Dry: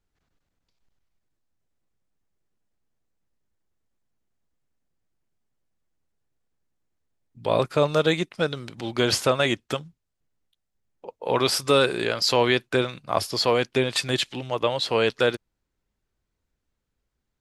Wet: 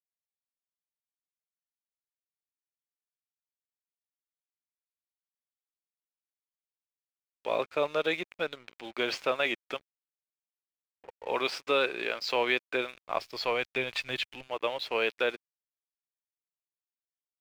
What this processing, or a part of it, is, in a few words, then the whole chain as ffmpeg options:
pocket radio on a weak battery: -filter_complex "[0:a]highpass=350,lowpass=3.9k,aeval=exprs='sgn(val(0))*max(abs(val(0))-0.00596,0)':c=same,equalizer=f=2.4k:t=o:w=0.39:g=7.5,asettb=1/sr,asplit=3[a][b][c];[a]atrim=end=12.764[d];[b]atrim=start=12.76:end=14.48,asetpts=PTS-STARTPTS,afade=t=in:d=0.004:c=qsin,afade=t=out:st=1.716:d=0.004:c=qsin,asubboost=boost=10.5:cutoff=130[e];[c]atrim=start=14.476[f];[d][e]acrossfade=d=0.004:c1=hsin:c2=qsin[g];[g][f]acrossfade=d=0.004:c1=qsin:c2=hsin,volume=-6.5dB"

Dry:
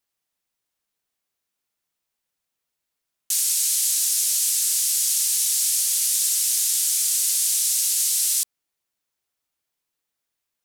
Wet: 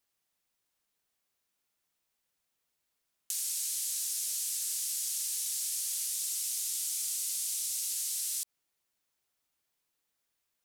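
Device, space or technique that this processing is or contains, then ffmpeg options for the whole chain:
de-esser from a sidechain: -filter_complex "[0:a]asplit=2[a][b];[b]highpass=f=4k:w=0.5412,highpass=f=4k:w=1.3066,apad=whole_len=469607[c];[a][c]sidechaincompress=threshold=-31dB:ratio=8:attack=3.2:release=73,asettb=1/sr,asplit=3[d][e][f];[d]atrim=end=6.144[g];[e]atrim=start=6.14:end=7.92,asetpts=PTS-STARTPTS,afade=t=in:d=0.004:c=qsin,afade=t=out:st=1.776:d=0.004:c=qsin,bandreject=f=1.7k:w=9.9[h];[f]atrim=start=7.916[i];[g][h]acrossfade=d=0.004:c1=hsin:c2=qsin[j];[j][i]acrossfade=d=0.004:c1=qsin:c2=hsin"

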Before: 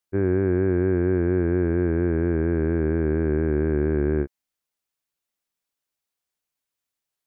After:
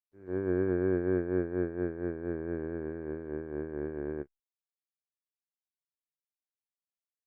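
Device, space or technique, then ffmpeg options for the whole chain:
video call: -af "highpass=f=140:p=1,dynaudnorm=f=140:g=3:m=15.5dB,agate=range=-36dB:threshold=-7dB:ratio=16:detection=peak" -ar 48000 -c:a libopus -b:a 24k

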